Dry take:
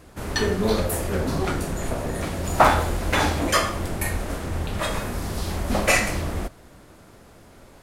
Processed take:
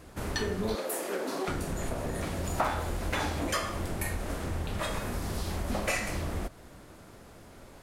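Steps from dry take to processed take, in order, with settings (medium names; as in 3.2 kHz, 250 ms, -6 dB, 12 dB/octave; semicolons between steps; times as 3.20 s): 0.75–1.48 s: high-pass 280 Hz 24 dB/octave; compression 2.5:1, threshold -29 dBFS, peak gain reduction 12.5 dB; trim -2 dB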